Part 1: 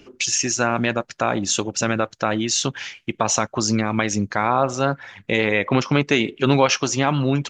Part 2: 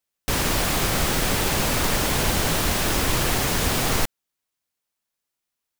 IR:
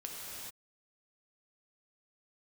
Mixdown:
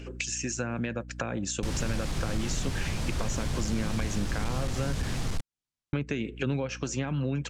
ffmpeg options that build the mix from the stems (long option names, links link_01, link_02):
-filter_complex "[0:a]equalizer=frequency=500:width_type=o:width=0.33:gain=9,equalizer=frequency=1600:width_type=o:width=0.33:gain=8,equalizer=frequency=2500:width_type=o:width=0.33:gain=6,equalizer=frequency=8000:width_type=o:width=0.33:gain=12,acrossover=split=280[link_01][link_02];[link_02]acompressor=threshold=-27dB:ratio=10[link_03];[link_01][link_03]amix=inputs=2:normalize=0,aeval=exprs='val(0)+0.0112*(sin(2*PI*60*n/s)+sin(2*PI*2*60*n/s)/2+sin(2*PI*3*60*n/s)/3+sin(2*PI*4*60*n/s)/4+sin(2*PI*5*60*n/s)/5)':channel_layout=same,volume=-1.5dB,asplit=3[link_04][link_05][link_06];[link_04]atrim=end=5.17,asetpts=PTS-STARTPTS,afade=type=out:start_time=5.166:duration=0.004:curve=hsin[link_07];[link_05]atrim=start=5.17:end=5.93,asetpts=PTS-STARTPTS,volume=0[link_08];[link_06]atrim=start=5.93,asetpts=PTS-STARTPTS,afade=type=in:duration=0.004:curve=hsin[link_09];[link_07][link_08][link_09]concat=n=3:v=0:a=1[link_10];[1:a]lowpass=7300,bass=frequency=250:gain=13,treble=frequency=4000:gain=4,asoftclip=type=hard:threshold=-7dB,adelay=1350,volume=-10dB[link_11];[link_10][link_11]amix=inputs=2:normalize=0,acompressor=threshold=-31dB:ratio=2"